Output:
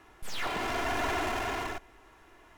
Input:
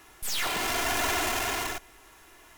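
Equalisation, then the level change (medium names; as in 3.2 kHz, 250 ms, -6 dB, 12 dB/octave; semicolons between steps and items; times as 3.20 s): low-pass 1.5 kHz 6 dB/octave; 0.0 dB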